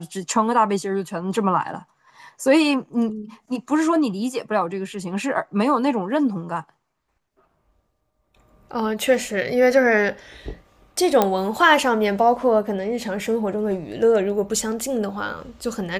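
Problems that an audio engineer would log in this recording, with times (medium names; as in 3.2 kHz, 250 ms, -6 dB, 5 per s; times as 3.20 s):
11.22 s: pop -4 dBFS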